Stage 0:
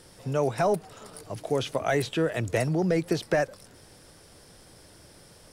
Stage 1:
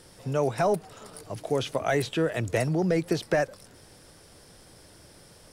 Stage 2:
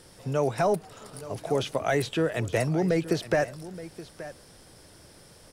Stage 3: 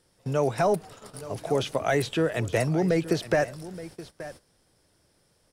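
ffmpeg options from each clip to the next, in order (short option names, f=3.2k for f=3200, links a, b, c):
-af anull
-af "aecho=1:1:874:0.168"
-af "agate=range=-15dB:threshold=-45dB:ratio=16:detection=peak,volume=1dB"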